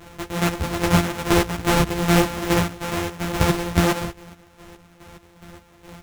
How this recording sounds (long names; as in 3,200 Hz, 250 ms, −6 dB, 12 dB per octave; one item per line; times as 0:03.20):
a buzz of ramps at a fixed pitch in blocks of 256 samples
chopped level 2.4 Hz, depth 65%, duty 40%
aliases and images of a low sample rate 4,600 Hz, jitter 20%
a shimmering, thickened sound